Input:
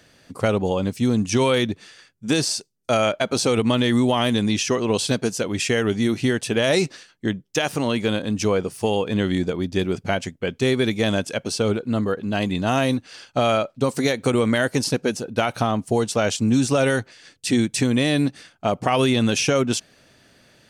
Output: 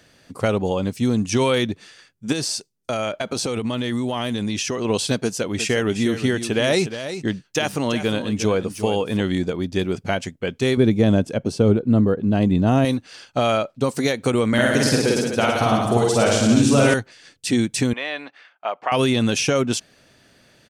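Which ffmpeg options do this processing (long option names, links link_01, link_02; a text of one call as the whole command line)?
ffmpeg -i in.wav -filter_complex "[0:a]asettb=1/sr,asplit=3[link_01][link_02][link_03];[link_01]atrim=end=2.324[link_04];[link_02]atrim=start=2.32:end=4.85,asetpts=PTS-STARTPTS,afade=type=in:duration=0.004:curve=qsin,afade=type=out:start_time=2.526:duration=0.004:curve=qsin,acompressor=threshold=-20dB:ratio=6:attack=3.2:release=140:knee=1:detection=peak[link_05];[link_03]atrim=start=4.846[link_06];[link_04][link_05]acrossfade=duration=0.004:curve1=hsin:curve2=qsin[link_07];[link_07][link_06]acrossfade=duration=0.004:curve1=qsin:curve2=hsin,asplit=3[link_08][link_09][link_10];[link_08]afade=type=out:start_time=5.53:duration=0.02[link_11];[link_09]aecho=1:1:357:0.299,afade=type=in:start_time=5.53:duration=0.02,afade=type=out:start_time=9.2:duration=0.02[link_12];[link_10]afade=type=in:start_time=9.2:duration=0.02[link_13];[link_11][link_12][link_13]amix=inputs=3:normalize=0,asettb=1/sr,asplit=3[link_14][link_15][link_16];[link_14]atrim=end=10.774[link_17];[link_15]atrim=start=10.77:end=12.85,asetpts=PTS-STARTPTS,afade=type=in:duration=0.004:curve=qsin,afade=type=out:start_time=2.076:duration=0.004:curve=qsin,tiltshelf=frequency=740:gain=8[link_18];[link_16]atrim=start=12.846[link_19];[link_17][link_18]acrossfade=duration=0.004:curve1=hsin:curve2=qsin[link_20];[link_20][link_19]acrossfade=duration=0.004:curve1=qsin:curve2=hsin,asettb=1/sr,asplit=3[link_21][link_22][link_23];[link_21]atrim=end=14.484[link_24];[link_22]atrim=start=14.48:end=16.94,asetpts=PTS-STARTPTS,afade=type=in:duration=0.004:curve=qsin,afade=type=out:start_time=2.456:duration=0.004:curve=qsin,aecho=1:1:50|107.5|173.6|249.7|337.1:0.794|0.631|0.501|0.398|0.316,atrim=end_sample=108486[link_25];[link_23]atrim=start=16.936[link_26];[link_24][link_25]acrossfade=duration=0.004:curve1=hsin:curve2=qsin[link_27];[link_27][link_26]acrossfade=duration=0.004:curve1=qsin:curve2=hsin,asettb=1/sr,asplit=3[link_28][link_29][link_30];[link_28]atrim=end=17.934[link_31];[link_29]atrim=start=17.93:end=18.92,asetpts=PTS-STARTPTS,afade=type=in:duration=0.004:curve=qsin,afade=type=out:start_time=0.986:duration=0.004:curve=qsin,asuperpass=centerf=1400:order=4:qfactor=0.65[link_32];[link_30]atrim=start=18.916[link_33];[link_31][link_32]acrossfade=duration=0.004:curve1=hsin:curve2=qsin[link_34];[link_34][link_33]acrossfade=duration=0.004:curve1=qsin:curve2=hsin" out.wav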